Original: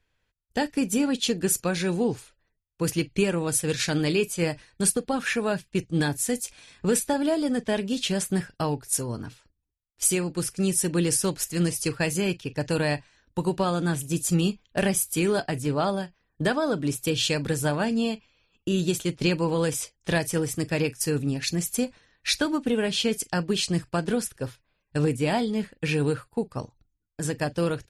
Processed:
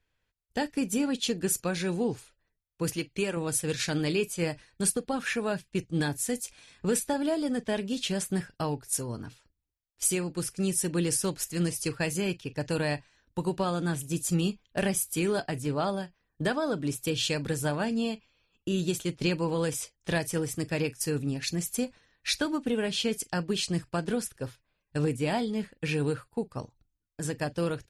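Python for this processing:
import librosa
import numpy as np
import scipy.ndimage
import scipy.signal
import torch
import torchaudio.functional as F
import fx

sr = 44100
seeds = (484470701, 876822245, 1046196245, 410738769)

y = fx.low_shelf(x, sr, hz=220.0, db=-8.5, at=(2.96, 3.37))
y = F.gain(torch.from_numpy(y), -4.0).numpy()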